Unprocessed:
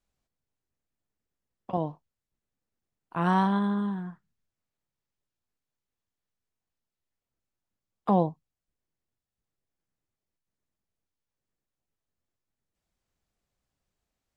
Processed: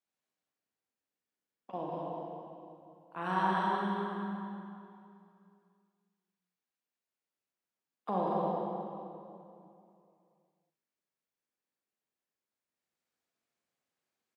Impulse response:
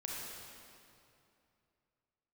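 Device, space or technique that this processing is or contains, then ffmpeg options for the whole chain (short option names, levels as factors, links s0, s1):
stadium PA: -filter_complex "[0:a]highpass=240,equalizer=f=2300:t=o:w=1.8:g=3,aecho=1:1:192.4|236.2:0.501|0.501[s0];[1:a]atrim=start_sample=2205[s1];[s0][s1]afir=irnorm=-1:irlink=0,volume=0.501"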